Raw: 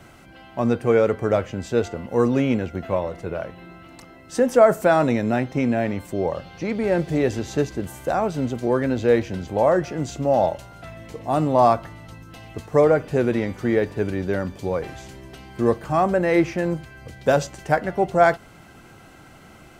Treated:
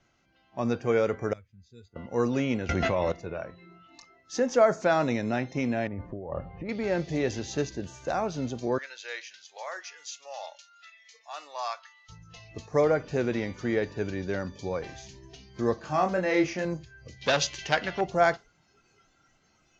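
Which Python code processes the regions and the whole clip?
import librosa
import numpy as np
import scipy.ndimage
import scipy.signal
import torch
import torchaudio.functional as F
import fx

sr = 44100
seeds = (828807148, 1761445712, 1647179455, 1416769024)

y = fx.chain(x, sr, fx.notch(hz=2900.0, q=8.9),
    fx.resample_bad(factor=4, down='filtered', up='hold'),
    fx.tone_stack(knobs='6-0-2'), at=(1.33, 1.96))
y = fx.chain(y, sr, fx.peak_eq(hz=2100.0, db=2.5, octaves=0.41),
    fx.env_flatten(amount_pct=100), at=(2.69, 3.12))
y = fx.chain(y, sr, fx.lowpass(hz=1500.0, slope=12),
    fx.low_shelf(hz=95.0, db=10.5),
    fx.over_compress(threshold_db=-28.0, ratio=-1.0), at=(5.87, 6.69))
y = fx.chain(y, sr, fx.median_filter(points=3),
    fx.highpass(hz=1500.0, slope=12), at=(8.78, 12.09))
y = fx.chain(y, sr, fx.low_shelf(hz=130.0, db=-6.5),
    fx.doubler(ms=27.0, db=-5), at=(15.75, 16.65))
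y = fx.chain(y, sr, fx.peak_eq(hz=3200.0, db=14.0, octaves=1.5),
    fx.transformer_sat(knee_hz=1600.0), at=(17.22, 18.01))
y = fx.noise_reduce_blind(y, sr, reduce_db=15)
y = scipy.signal.sosfilt(scipy.signal.cheby1(6, 1.0, 6700.0, 'lowpass', fs=sr, output='sos'), y)
y = fx.high_shelf(y, sr, hz=3400.0, db=10.0)
y = F.gain(torch.from_numpy(y), -6.5).numpy()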